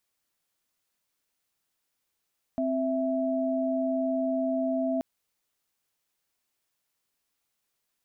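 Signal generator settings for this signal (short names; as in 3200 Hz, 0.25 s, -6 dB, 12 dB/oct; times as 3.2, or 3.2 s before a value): chord C4/E5 sine, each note -27.5 dBFS 2.43 s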